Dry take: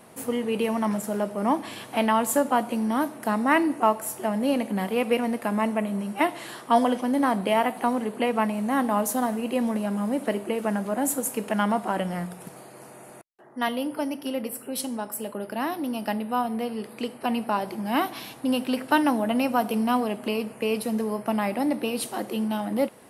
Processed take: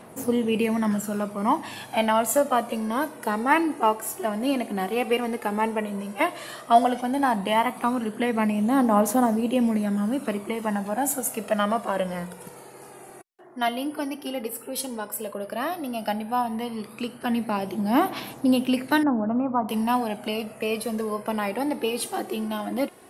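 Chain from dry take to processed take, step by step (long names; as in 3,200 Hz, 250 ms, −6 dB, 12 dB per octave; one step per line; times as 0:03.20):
0:19.03–0:19.69: low-pass filter 1,200 Hz 24 dB per octave
phase shifter 0.11 Hz, delay 2.9 ms, feedback 48%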